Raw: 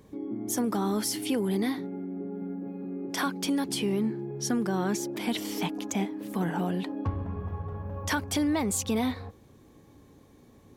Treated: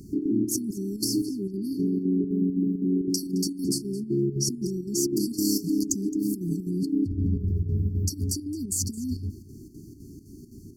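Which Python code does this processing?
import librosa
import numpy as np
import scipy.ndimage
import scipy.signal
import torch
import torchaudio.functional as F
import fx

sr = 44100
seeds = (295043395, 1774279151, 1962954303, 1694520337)

y = fx.peak_eq(x, sr, hz=10000.0, db=-14.0, octaves=2.2, at=(1.03, 1.63), fade=0.02)
y = fx.over_compress(y, sr, threshold_db=-34.0, ratio=-1.0)
y = fx.chopper(y, sr, hz=3.9, depth_pct=60, duty_pct=75)
y = fx.brickwall_bandstop(y, sr, low_hz=410.0, high_hz=4300.0)
y = y + 10.0 ** (-19.5 / 20.0) * np.pad(y, (int(217 * sr / 1000.0), 0))[:len(y)]
y = F.gain(torch.from_numpy(y), 8.5).numpy()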